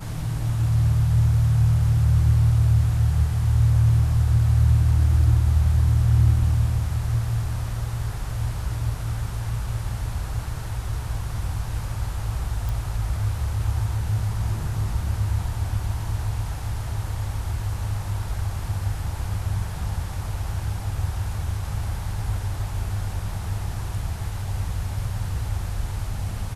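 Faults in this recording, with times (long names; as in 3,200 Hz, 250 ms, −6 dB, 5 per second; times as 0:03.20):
0:12.69: click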